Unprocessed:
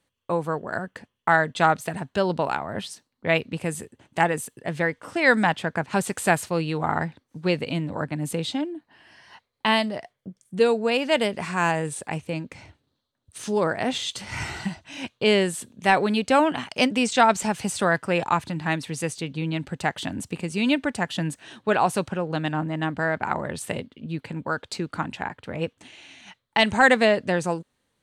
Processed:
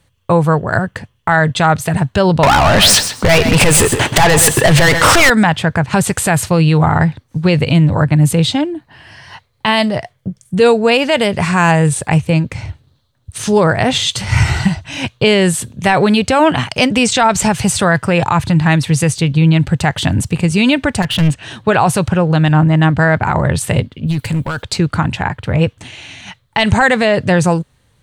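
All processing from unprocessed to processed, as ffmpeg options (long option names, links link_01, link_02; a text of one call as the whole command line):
ffmpeg -i in.wav -filter_complex "[0:a]asettb=1/sr,asplit=3[link_01][link_02][link_03];[link_01]atrim=end=2.434[link_04];[link_02]atrim=start=2.43:end=5.3,asetpts=PTS-STARTPTS,afade=type=in:duration=0.004:curve=qsin,afade=type=out:start_time=2.866:duration=0.004:curve=qsin,acompressor=threshold=-32dB:ratio=4:attack=3.2:release=140:knee=1:detection=peak,asplit=2[link_05][link_06];[link_06]highpass=frequency=720:poles=1,volume=38dB,asoftclip=type=tanh:threshold=-12dB[link_07];[link_05][link_07]amix=inputs=2:normalize=0,lowpass=frequency=8000:poles=1,volume=-6dB,aecho=1:1:130|260:0.266|0.0452,atrim=end_sample=126567[link_08];[link_03]atrim=start=5.296[link_09];[link_04][link_08]acrossfade=duration=0.004:curve1=hsin:curve2=qsin[link_10];[link_10][link_09]acrossfade=duration=0.004:curve1=qsin:curve2=hsin,asettb=1/sr,asplit=3[link_11][link_12][link_13];[link_11]atrim=end=21.024[link_14];[link_12]atrim=start=21.02:end=21.43,asetpts=PTS-STARTPTS,afade=type=in:duration=0.004:curve=qsin,afade=type=out:start_time=0.406:duration=0.004:curve=qsin,equalizer=frequency=2800:width=3.6:gain=9,adynamicsmooth=sensitivity=3.5:basefreq=6100,asoftclip=type=hard:threshold=-27.5dB[link_15];[link_13]atrim=start=21.426[link_16];[link_14][link_15]acrossfade=duration=0.004:curve1=hsin:curve2=qsin[link_17];[link_17][link_16]acrossfade=duration=0.004:curve1=qsin:curve2=hsin,asettb=1/sr,asplit=3[link_18][link_19][link_20];[link_18]atrim=end=24.074[link_21];[link_19]atrim=start=24.07:end=24.63,asetpts=PTS-STARTPTS,afade=type=in:duration=0.004:curve=qsin,afade=type=out:start_time=0.556:duration=0.004:curve=qsin,aemphasis=mode=production:type=75fm,acompressor=threshold=-28dB:ratio=6:attack=3.2:release=140:knee=1:detection=peak,asoftclip=type=hard:threshold=-29.5dB[link_22];[link_20]atrim=start=24.626[link_23];[link_21][link_22]acrossfade=duration=0.004:curve1=hsin:curve2=qsin[link_24];[link_24][link_23]acrossfade=duration=0.004:curve1=qsin:curve2=hsin,lowshelf=frequency=170:width_type=q:width=1.5:gain=10,alimiter=level_in=14.5dB:limit=-1dB:release=50:level=0:latency=1,volume=-1dB" out.wav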